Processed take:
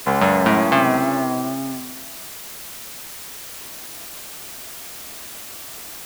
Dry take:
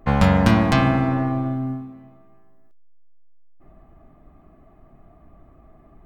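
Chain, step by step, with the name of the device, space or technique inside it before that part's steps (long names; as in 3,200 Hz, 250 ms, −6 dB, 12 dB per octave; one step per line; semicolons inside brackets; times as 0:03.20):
wax cylinder (band-pass filter 320–2,800 Hz; tape wow and flutter; white noise bed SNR 12 dB)
level +5 dB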